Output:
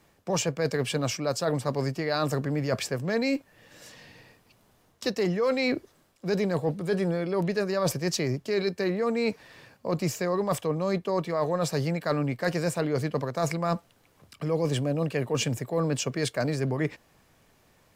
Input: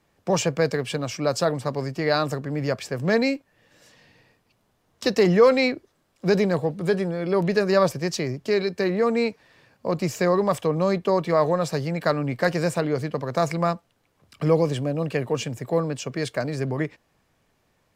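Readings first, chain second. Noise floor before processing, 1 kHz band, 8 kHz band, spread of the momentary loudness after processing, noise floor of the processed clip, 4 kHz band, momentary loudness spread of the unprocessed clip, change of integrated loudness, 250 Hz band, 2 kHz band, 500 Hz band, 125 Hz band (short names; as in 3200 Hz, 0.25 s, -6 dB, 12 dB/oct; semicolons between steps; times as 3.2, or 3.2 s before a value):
-68 dBFS, -5.5 dB, +1.0 dB, 4 LU, -64 dBFS, -2.0 dB, 7 LU, -4.5 dB, -3.5 dB, -4.5 dB, -5.5 dB, -2.5 dB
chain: high shelf 7600 Hz +5 dB; reverse; compressor 6:1, threshold -29 dBFS, peak gain reduction 17 dB; reverse; gain +5 dB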